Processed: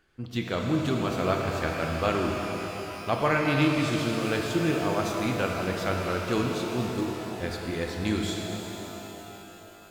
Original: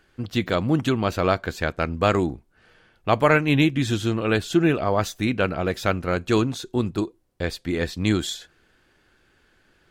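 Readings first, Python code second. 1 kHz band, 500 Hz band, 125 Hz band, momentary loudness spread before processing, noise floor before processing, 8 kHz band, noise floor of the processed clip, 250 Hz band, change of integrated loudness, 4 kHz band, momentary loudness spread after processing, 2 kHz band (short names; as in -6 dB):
-3.5 dB, -4.5 dB, -5.0 dB, 10 LU, -63 dBFS, -2.5 dB, -47 dBFS, -4.5 dB, -5.0 dB, -3.5 dB, 12 LU, -4.0 dB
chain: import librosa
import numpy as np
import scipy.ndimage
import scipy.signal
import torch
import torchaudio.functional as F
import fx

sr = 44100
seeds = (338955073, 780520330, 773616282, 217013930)

y = fx.rev_shimmer(x, sr, seeds[0], rt60_s=3.8, semitones=12, shimmer_db=-8, drr_db=0.5)
y = y * librosa.db_to_amplitude(-7.5)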